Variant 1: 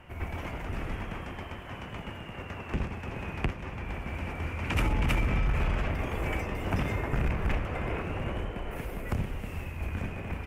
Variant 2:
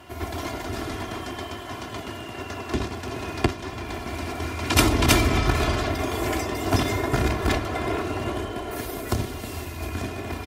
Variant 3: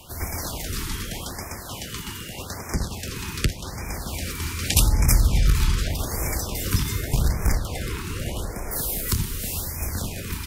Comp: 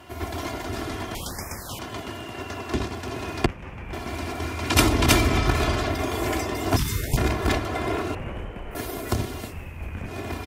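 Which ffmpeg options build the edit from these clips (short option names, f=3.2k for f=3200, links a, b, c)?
-filter_complex "[2:a]asplit=2[a][b];[0:a]asplit=3[c][d][e];[1:a]asplit=6[f][g][h][i][j][k];[f]atrim=end=1.152[l];[a]atrim=start=1.148:end=1.792[m];[g]atrim=start=1.788:end=3.462[n];[c]atrim=start=3.458:end=3.932[o];[h]atrim=start=3.928:end=6.772[p];[b]atrim=start=6.768:end=7.172[q];[i]atrim=start=7.168:end=8.152[r];[d]atrim=start=8.148:end=8.752[s];[j]atrim=start=8.748:end=9.54[t];[e]atrim=start=9.44:end=10.15[u];[k]atrim=start=10.05[v];[l][m]acrossfade=d=0.004:c1=hsin:c2=hsin[w];[w][n]acrossfade=d=0.004:c1=hsin:c2=hsin[x];[x][o]acrossfade=d=0.004:c1=hsin:c2=hsin[y];[y][p]acrossfade=d=0.004:c1=hsin:c2=hsin[z];[z][q]acrossfade=d=0.004:c1=hsin:c2=hsin[aa];[aa][r]acrossfade=d=0.004:c1=hsin:c2=hsin[ab];[ab][s]acrossfade=d=0.004:c1=hsin:c2=hsin[ac];[ac][t]acrossfade=d=0.004:c1=hsin:c2=hsin[ad];[ad][u]acrossfade=d=0.1:c1=tri:c2=tri[ae];[ae][v]acrossfade=d=0.1:c1=tri:c2=tri"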